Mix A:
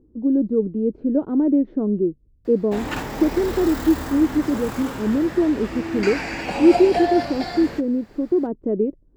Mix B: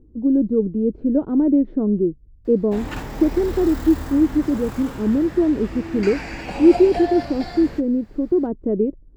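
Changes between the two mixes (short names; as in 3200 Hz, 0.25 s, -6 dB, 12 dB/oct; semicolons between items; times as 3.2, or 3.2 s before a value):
background -4.5 dB; master: add low shelf 110 Hz +11 dB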